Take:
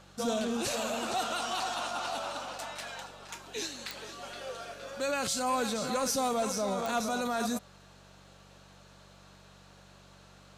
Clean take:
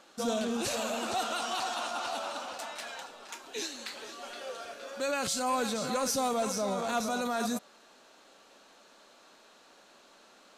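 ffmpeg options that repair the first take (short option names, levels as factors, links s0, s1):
-af "adeclick=t=4,bandreject=f=47.7:t=h:w=4,bandreject=f=95.4:t=h:w=4,bandreject=f=143.1:t=h:w=4,bandreject=f=190.8:t=h:w=4"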